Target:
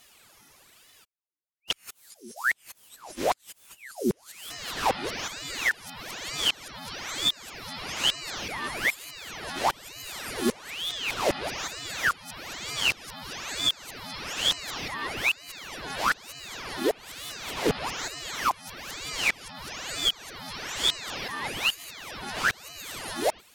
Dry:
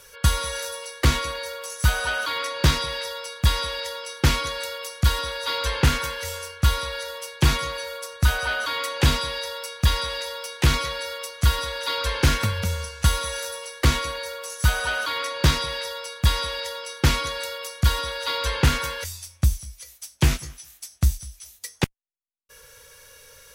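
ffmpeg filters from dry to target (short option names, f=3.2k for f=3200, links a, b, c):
-af "areverse,aeval=exprs='val(0)*sin(2*PI*1900*n/s+1900*0.85/1.1*sin(2*PI*1.1*n/s))':c=same,volume=-4.5dB"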